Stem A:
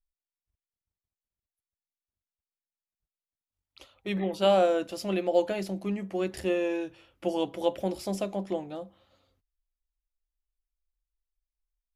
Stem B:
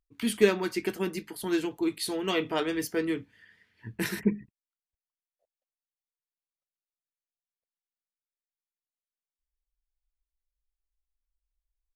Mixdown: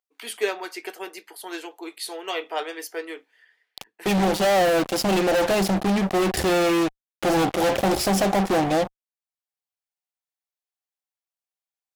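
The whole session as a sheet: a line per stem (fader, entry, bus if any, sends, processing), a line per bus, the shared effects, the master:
−5.5 dB, 0.00 s, no send, speech leveller within 4 dB 2 s; fuzz pedal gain 41 dB, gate −42 dBFS
+0.5 dB, 0.00 s, no send, high-pass filter 440 Hz 24 dB per octave; automatic ducking −10 dB, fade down 0.35 s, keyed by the first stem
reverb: not used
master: parametric band 760 Hz +7 dB 0.26 octaves

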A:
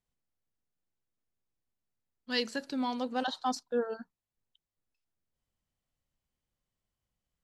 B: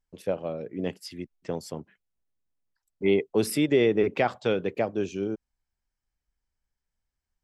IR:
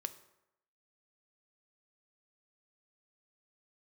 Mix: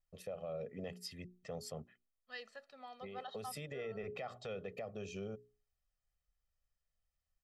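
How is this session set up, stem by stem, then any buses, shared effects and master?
−13.5 dB, 0.00 s, no send, three-way crossover with the lows and the highs turned down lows −14 dB, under 580 Hz, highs −14 dB, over 3,200 Hz
0:02.02 −8 dB → 0:02.25 −17 dB → 0:03.15 −17 dB → 0:03.83 −7.5 dB, 0.00 s, no send, mains-hum notches 60/120/180/240/300/360/420 Hz; downward compressor 5 to 1, threshold −29 dBFS, peak gain reduction 11 dB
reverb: not used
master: comb filter 1.6 ms, depth 89%; brickwall limiter −34.5 dBFS, peak gain reduction 11 dB

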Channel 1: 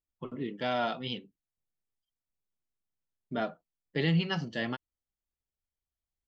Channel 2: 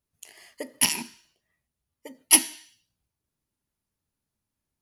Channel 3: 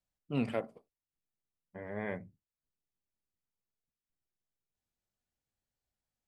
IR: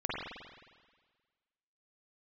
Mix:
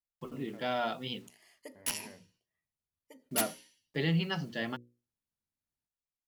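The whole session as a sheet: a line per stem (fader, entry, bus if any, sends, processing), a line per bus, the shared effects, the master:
−2.0 dB, 0.00 s, no send, bit reduction 10 bits
−12.0 dB, 1.05 s, no send, wrap-around overflow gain 9.5 dB
−12.5 dB, 0.00 s, no send, brickwall limiter −28 dBFS, peak gain reduction 8 dB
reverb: not used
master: mains-hum notches 60/120/180/240/300/360/420/480/540 Hz

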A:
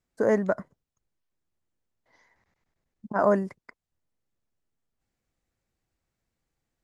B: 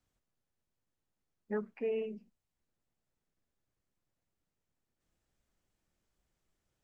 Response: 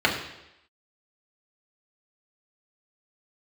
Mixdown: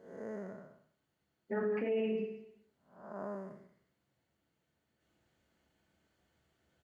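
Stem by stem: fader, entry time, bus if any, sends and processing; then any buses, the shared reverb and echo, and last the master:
−14.0 dB, 0.00 s, no send, echo send −19.5 dB, spectrum smeared in time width 312 ms
−3.5 dB, 0.00 s, send −5 dB, echo send −3 dB, no processing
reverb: on, RT60 0.85 s, pre-delay 3 ms
echo: single-tap delay 198 ms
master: high-pass filter 62 Hz; brickwall limiter −27 dBFS, peak gain reduction 10 dB

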